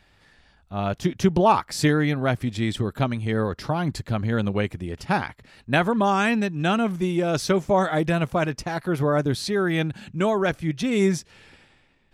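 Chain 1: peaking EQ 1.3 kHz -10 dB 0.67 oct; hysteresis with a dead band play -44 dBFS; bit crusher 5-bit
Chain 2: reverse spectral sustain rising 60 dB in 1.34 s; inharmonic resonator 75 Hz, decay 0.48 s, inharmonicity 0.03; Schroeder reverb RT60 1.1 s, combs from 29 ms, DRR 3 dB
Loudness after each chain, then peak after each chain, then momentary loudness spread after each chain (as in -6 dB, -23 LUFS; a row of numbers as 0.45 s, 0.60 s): -24.0 LUFS, -30.0 LUFS; -6.5 dBFS, -12.0 dBFS; 6 LU, 8 LU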